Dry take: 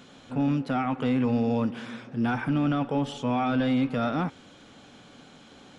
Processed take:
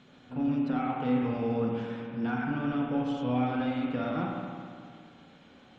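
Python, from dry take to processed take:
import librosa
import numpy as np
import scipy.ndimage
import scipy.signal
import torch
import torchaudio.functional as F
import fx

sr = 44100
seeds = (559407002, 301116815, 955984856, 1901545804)

y = fx.spec_quant(x, sr, step_db=15)
y = fx.air_absorb(y, sr, metres=89.0)
y = fx.rev_spring(y, sr, rt60_s=2.1, pass_ms=(32, 52), chirp_ms=70, drr_db=-1.0)
y = F.gain(torch.from_numpy(y), -6.5).numpy()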